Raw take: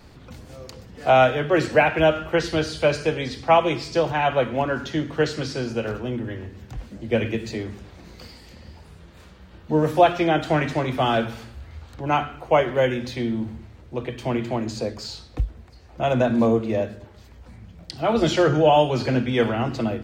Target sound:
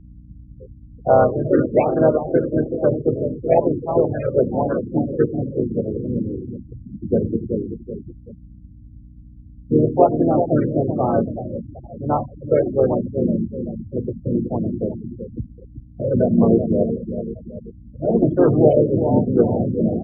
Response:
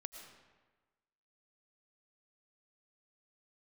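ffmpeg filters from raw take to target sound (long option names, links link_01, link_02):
-filter_complex "[0:a]tiltshelf=frequency=970:gain=5.5,aecho=1:1:380|760|1140|1520|1900|2280:0.376|0.188|0.094|0.047|0.0235|0.0117,afftfilt=real='re*gte(hypot(re,im),0.158)':imag='im*gte(hypot(re,im),0.158)':win_size=1024:overlap=0.75,acrossover=split=110[link_01][link_02];[link_01]acompressor=threshold=-49dB:ratio=5[link_03];[link_03][link_02]amix=inputs=2:normalize=0,aeval=exprs='val(0)+0.00891*(sin(2*PI*60*n/s)+sin(2*PI*2*60*n/s)/2+sin(2*PI*3*60*n/s)/3+sin(2*PI*4*60*n/s)/4+sin(2*PI*5*60*n/s)/5)':channel_layout=same,asplit=3[link_04][link_05][link_06];[link_05]asetrate=33038,aresample=44100,atempo=1.33484,volume=-5dB[link_07];[link_06]asetrate=37084,aresample=44100,atempo=1.18921,volume=-6dB[link_08];[link_04][link_07][link_08]amix=inputs=3:normalize=0,highshelf=frequency=2300:gain=-7.5,afftfilt=real='re*(1-between(b*sr/1024,830*pow(2500/830,0.5+0.5*sin(2*PI*1.1*pts/sr))/1.41,830*pow(2500/830,0.5+0.5*sin(2*PI*1.1*pts/sr))*1.41))':imag='im*(1-between(b*sr/1024,830*pow(2500/830,0.5+0.5*sin(2*PI*1.1*pts/sr))/1.41,830*pow(2500/830,0.5+0.5*sin(2*PI*1.1*pts/sr))*1.41))':win_size=1024:overlap=0.75,volume=-1.5dB"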